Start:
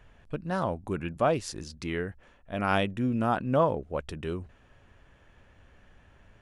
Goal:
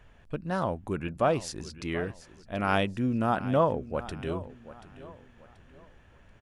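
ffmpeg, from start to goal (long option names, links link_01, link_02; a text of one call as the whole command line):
ffmpeg -i in.wav -af "aecho=1:1:733|1466|2199:0.158|0.0555|0.0194" out.wav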